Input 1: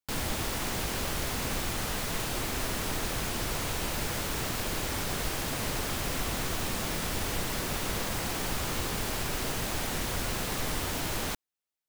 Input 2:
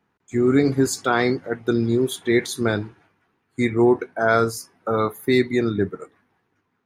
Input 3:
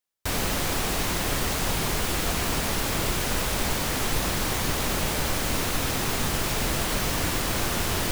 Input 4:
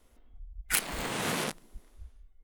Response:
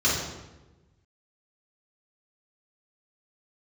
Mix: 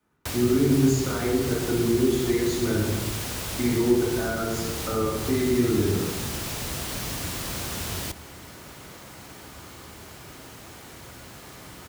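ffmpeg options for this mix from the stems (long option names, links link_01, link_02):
-filter_complex "[0:a]adelay=950,volume=-11.5dB,asplit=2[link_01][link_02];[link_02]volume=-21.5dB[link_03];[1:a]alimiter=limit=-14.5dB:level=0:latency=1,volume=-11.5dB,asplit=2[link_04][link_05];[link_05]volume=-4dB[link_06];[2:a]acrossover=split=130|3000[link_07][link_08][link_09];[link_08]acompressor=threshold=-32dB:ratio=6[link_10];[link_07][link_10][link_09]amix=inputs=3:normalize=0,volume=-1.5dB[link_11];[3:a]volume=-13.5dB[link_12];[4:a]atrim=start_sample=2205[link_13];[link_03][link_06]amix=inputs=2:normalize=0[link_14];[link_14][link_13]afir=irnorm=-1:irlink=0[link_15];[link_01][link_04][link_11][link_12][link_15]amix=inputs=5:normalize=0,highpass=63,acrossover=split=420[link_16][link_17];[link_17]acompressor=threshold=-30dB:ratio=3[link_18];[link_16][link_18]amix=inputs=2:normalize=0"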